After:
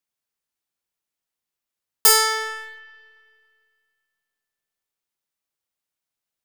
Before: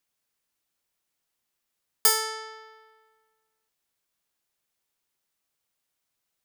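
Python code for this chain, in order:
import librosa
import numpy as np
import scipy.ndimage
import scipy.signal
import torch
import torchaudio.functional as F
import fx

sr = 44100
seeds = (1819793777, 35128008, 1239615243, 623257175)

y = fx.leveller(x, sr, passes=3)
y = fx.rev_spring(y, sr, rt60_s=2.2, pass_ms=(32, 55), chirp_ms=70, drr_db=11.5)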